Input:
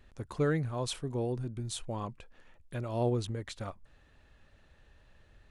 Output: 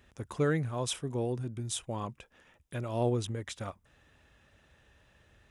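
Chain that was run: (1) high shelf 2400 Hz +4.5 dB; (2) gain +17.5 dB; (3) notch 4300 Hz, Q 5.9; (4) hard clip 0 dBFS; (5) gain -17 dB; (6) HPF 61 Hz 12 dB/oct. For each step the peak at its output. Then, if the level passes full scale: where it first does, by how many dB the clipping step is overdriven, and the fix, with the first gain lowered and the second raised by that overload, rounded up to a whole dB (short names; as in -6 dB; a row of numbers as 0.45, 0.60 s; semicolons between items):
-19.0, -1.5, -1.5, -1.5, -18.5, -17.0 dBFS; no overload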